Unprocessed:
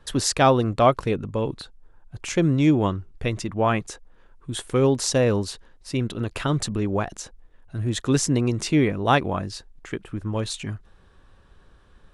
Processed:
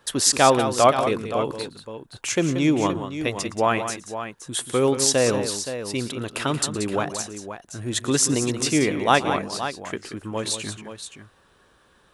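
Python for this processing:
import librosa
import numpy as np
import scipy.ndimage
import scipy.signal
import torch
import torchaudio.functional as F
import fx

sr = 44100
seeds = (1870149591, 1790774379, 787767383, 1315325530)

y = fx.highpass(x, sr, hz=330.0, slope=6)
y = fx.high_shelf(y, sr, hz=8600.0, db=11.0)
y = fx.echo_multitap(y, sr, ms=(115, 181, 522), db=(-19.5, -10.0, -10.5))
y = y * 10.0 ** (2.0 / 20.0)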